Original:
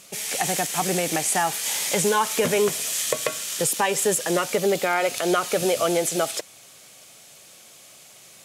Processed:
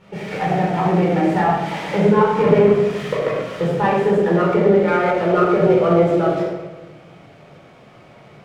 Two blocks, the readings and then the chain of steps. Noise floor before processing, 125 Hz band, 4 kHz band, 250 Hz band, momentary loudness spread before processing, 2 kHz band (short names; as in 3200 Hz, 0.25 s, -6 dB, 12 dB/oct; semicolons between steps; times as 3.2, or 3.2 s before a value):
-49 dBFS, +14.0 dB, -8.0 dB, +11.5 dB, 4 LU, +1.5 dB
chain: LPF 1800 Hz 12 dB/oct; tilt -1.5 dB/oct; in parallel at +1.5 dB: compressor, threshold -30 dBFS, peak gain reduction 14 dB; on the sum: shoebox room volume 610 m³, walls mixed, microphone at 4.4 m; running maximum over 3 samples; gain -6.5 dB